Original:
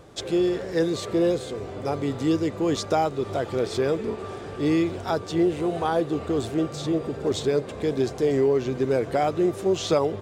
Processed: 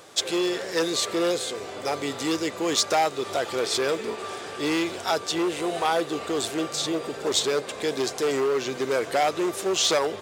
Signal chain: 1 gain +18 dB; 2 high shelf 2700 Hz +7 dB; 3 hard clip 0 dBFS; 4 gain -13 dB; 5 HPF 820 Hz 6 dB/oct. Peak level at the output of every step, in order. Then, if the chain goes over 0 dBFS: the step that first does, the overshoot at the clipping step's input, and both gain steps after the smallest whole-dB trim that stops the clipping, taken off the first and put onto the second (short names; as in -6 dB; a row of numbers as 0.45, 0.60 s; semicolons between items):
+8.0, +9.0, 0.0, -13.0, -10.5 dBFS; step 1, 9.0 dB; step 1 +9 dB, step 4 -4 dB